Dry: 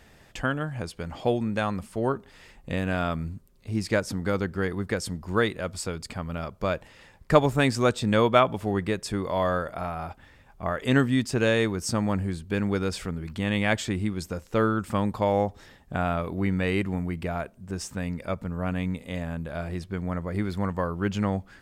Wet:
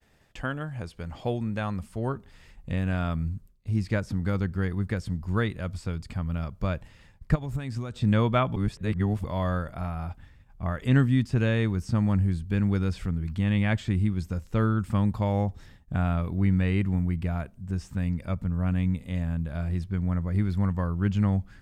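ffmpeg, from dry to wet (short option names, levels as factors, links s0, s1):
-filter_complex "[0:a]asplit=3[s0][s1][s2];[s0]afade=t=out:st=7.34:d=0.02[s3];[s1]acompressor=threshold=0.0398:ratio=8:attack=3.2:release=140:knee=1:detection=peak,afade=t=in:st=7.34:d=0.02,afade=t=out:st=8.01:d=0.02[s4];[s2]afade=t=in:st=8.01:d=0.02[s5];[s3][s4][s5]amix=inputs=3:normalize=0,asplit=3[s6][s7][s8];[s6]atrim=end=8.562[s9];[s7]atrim=start=8.558:end=9.242,asetpts=PTS-STARTPTS,areverse[s10];[s8]atrim=start=9.238[s11];[s9][s10]acrossfade=d=0.004:c1=hsin:c2=hsin[s12];[s12][s11]acrossfade=d=0.004:c1=hsin:c2=hsin,agate=range=0.0224:threshold=0.00355:ratio=3:detection=peak,acrossover=split=3700[s13][s14];[s14]acompressor=threshold=0.00562:ratio=4:attack=1:release=60[s15];[s13][s15]amix=inputs=2:normalize=0,asubboost=boost=4:cutoff=200,volume=0.596"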